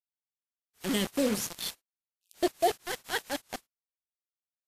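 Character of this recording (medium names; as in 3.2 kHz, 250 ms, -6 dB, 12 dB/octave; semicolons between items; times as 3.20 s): phasing stages 2, 0.9 Hz, lowest notch 650–1300 Hz; a quantiser's noise floor 6-bit, dither none; WMA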